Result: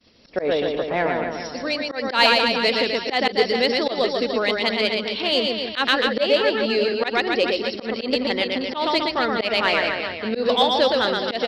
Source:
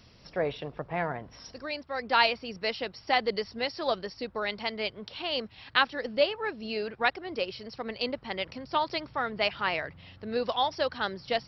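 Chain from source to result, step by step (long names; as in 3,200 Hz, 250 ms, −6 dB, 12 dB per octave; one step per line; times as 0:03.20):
downward expander −49 dBFS
octave-band graphic EQ 125/250/500/2,000/4,000 Hz −8/+10/+6/+4/+8 dB
reverse bouncing-ball delay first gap 120 ms, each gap 1.15×, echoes 5
volume swells 116 ms
in parallel at −5.5 dB: soft clipping −17 dBFS, distortion −13 dB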